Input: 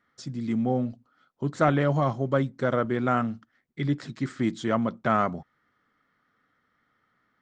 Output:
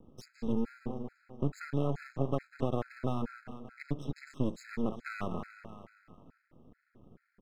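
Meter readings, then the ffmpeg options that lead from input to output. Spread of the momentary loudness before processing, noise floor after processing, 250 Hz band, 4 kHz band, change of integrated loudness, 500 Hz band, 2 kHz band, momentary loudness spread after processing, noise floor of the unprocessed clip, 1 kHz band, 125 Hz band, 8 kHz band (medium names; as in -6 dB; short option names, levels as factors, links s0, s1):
11 LU, -77 dBFS, -8.5 dB, -11.0 dB, -10.0 dB, -10.0 dB, -12.0 dB, 14 LU, -73 dBFS, -14.5 dB, -8.0 dB, no reading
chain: -filter_complex "[0:a]acrossover=split=470|2400[s0][s1][s2];[s0]acompressor=mode=upward:threshold=0.0158:ratio=2.5[s3];[s3][s1][s2]amix=inputs=3:normalize=0,adynamicequalizer=threshold=0.00794:dfrequency=2200:dqfactor=1.2:tfrequency=2200:tqfactor=1.2:attack=5:release=100:ratio=0.375:range=1.5:mode=cutabove:tftype=bell,asplit=2[s4][s5];[s5]aecho=0:1:191|382|573|764|955|1146:0.2|0.114|0.0648|0.037|0.0211|0.012[s6];[s4][s6]amix=inputs=2:normalize=0,acompressor=threshold=0.0562:ratio=6,lowshelf=f=450:g=7,aeval=exprs='max(val(0),0)':c=same,afftfilt=real='re*gt(sin(2*PI*2.3*pts/sr)*(1-2*mod(floor(b*sr/1024/1300),2)),0)':imag='im*gt(sin(2*PI*2.3*pts/sr)*(1-2*mod(floor(b*sr/1024/1300),2)),0)':win_size=1024:overlap=0.75,volume=0.708"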